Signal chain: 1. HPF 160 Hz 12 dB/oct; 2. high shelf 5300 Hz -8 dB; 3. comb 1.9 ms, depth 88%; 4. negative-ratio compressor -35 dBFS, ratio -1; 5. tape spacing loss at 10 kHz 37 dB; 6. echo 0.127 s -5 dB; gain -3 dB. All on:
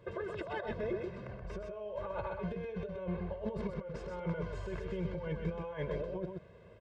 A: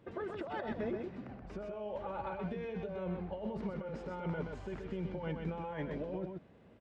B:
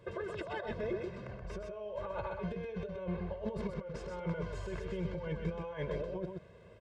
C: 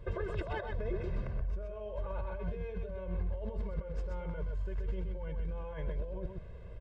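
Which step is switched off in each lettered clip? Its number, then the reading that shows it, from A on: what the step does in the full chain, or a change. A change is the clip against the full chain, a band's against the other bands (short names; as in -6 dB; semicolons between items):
3, 1 kHz band +3.0 dB; 2, 4 kHz band +2.0 dB; 1, 125 Hz band +5.0 dB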